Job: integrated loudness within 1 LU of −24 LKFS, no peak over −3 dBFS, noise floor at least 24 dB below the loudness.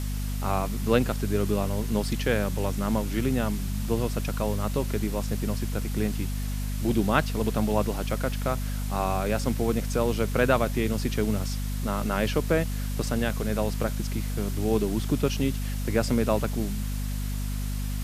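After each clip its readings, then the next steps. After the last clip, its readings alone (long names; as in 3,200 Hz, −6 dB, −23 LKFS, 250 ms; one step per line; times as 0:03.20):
mains hum 50 Hz; hum harmonics up to 250 Hz; level of the hum −27 dBFS; background noise floor −30 dBFS; target noise floor −52 dBFS; integrated loudness −27.5 LKFS; sample peak −5.0 dBFS; target loudness −24.0 LKFS
→ mains-hum notches 50/100/150/200/250 Hz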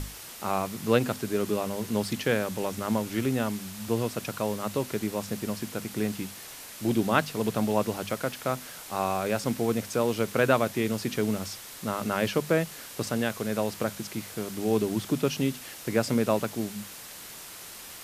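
mains hum none found; background noise floor −44 dBFS; target noise floor −53 dBFS
→ broadband denoise 9 dB, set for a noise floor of −44 dBFS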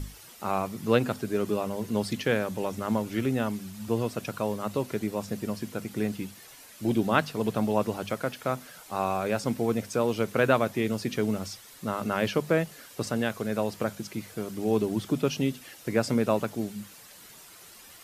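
background noise floor −50 dBFS; target noise floor −53 dBFS
→ broadband denoise 6 dB, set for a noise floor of −50 dBFS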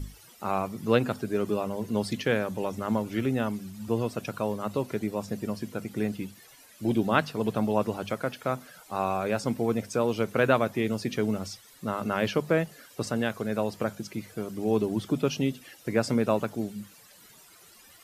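background noise floor −54 dBFS; integrated loudness −29.0 LKFS; sample peak −6.0 dBFS; target loudness −24.0 LKFS
→ level +5 dB
brickwall limiter −3 dBFS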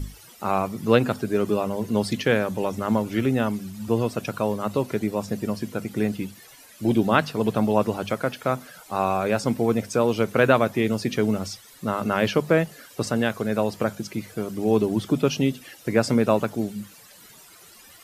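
integrated loudness −24.5 LKFS; sample peak −3.0 dBFS; background noise floor −49 dBFS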